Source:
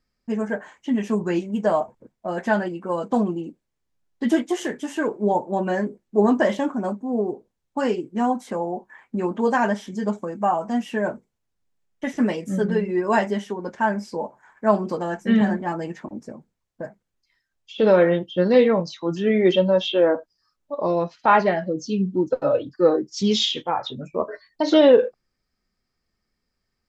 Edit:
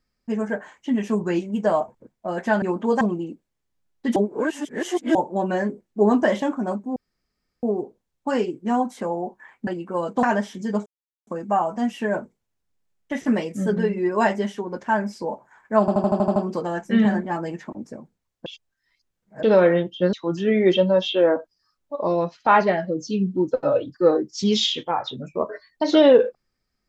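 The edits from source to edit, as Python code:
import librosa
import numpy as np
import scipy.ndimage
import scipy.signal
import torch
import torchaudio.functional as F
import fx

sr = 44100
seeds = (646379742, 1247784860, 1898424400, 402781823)

y = fx.edit(x, sr, fx.swap(start_s=2.62, length_s=0.56, other_s=9.17, other_length_s=0.39),
    fx.reverse_span(start_s=4.33, length_s=0.99),
    fx.insert_room_tone(at_s=7.13, length_s=0.67),
    fx.insert_silence(at_s=10.19, length_s=0.41),
    fx.stutter(start_s=14.72, slice_s=0.08, count=8),
    fx.reverse_span(start_s=16.82, length_s=0.97),
    fx.cut(start_s=18.49, length_s=0.43), tone=tone)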